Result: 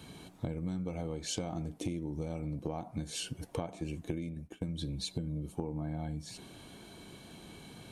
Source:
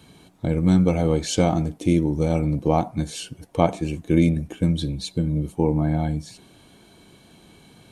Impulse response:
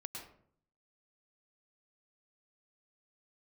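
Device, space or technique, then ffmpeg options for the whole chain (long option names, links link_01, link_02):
serial compression, leveller first: -filter_complex "[0:a]acompressor=threshold=-23dB:ratio=2,acompressor=threshold=-34dB:ratio=6,asplit=3[link_01][link_02][link_03];[link_01]afade=type=out:start_time=4.12:duration=0.02[link_04];[link_02]agate=range=-33dB:threshold=-33dB:ratio=3:detection=peak,afade=type=in:start_time=4.12:duration=0.02,afade=type=out:start_time=4.67:duration=0.02[link_05];[link_03]afade=type=in:start_time=4.67:duration=0.02[link_06];[link_04][link_05][link_06]amix=inputs=3:normalize=0,asettb=1/sr,asplit=3[link_07][link_08][link_09];[link_07]atrim=end=5.264[link_10];[link_08]atrim=start=5.26:end=5.81,asetpts=PTS-STARTPTS,afade=type=in:duration=0.004:curve=qsin,afade=type=out:start_time=0.546:duration=0.004:curve=qsin,bandreject=frequency=2000:width=7.6[link_11];[link_09]atrim=start=5.806[link_12];[link_10][link_11]acrossfade=duration=0.004:curve1=hsin:curve2=qsin[link_13];[link_13][link_12]acrossfade=duration=0.004:curve1=qsin:curve2=hsin"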